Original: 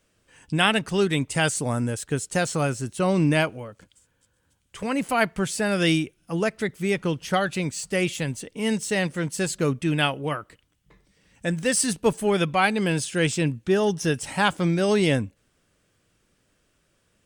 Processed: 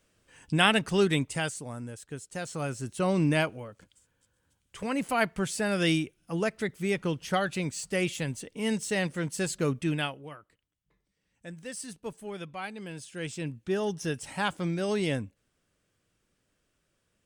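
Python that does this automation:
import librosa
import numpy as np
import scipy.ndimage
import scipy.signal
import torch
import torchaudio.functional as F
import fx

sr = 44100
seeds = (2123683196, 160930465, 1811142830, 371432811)

y = fx.gain(x, sr, db=fx.line((1.13, -2.0), (1.65, -13.5), (2.33, -13.5), (2.91, -4.5), (9.89, -4.5), (10.31, -17.0), (12.93, -17.0), (13.73, -8.0)))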